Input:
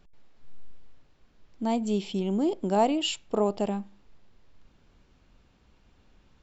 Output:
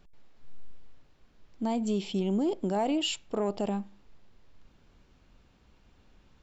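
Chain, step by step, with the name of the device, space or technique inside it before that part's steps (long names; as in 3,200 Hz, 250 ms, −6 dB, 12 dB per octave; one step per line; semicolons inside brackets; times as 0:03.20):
soft clipper into limiter (soft clipping −14.5 dBFS, distortion −23 dB; brickwall limiter −21.5 dBFS, peak gain reduction 5.5 dB)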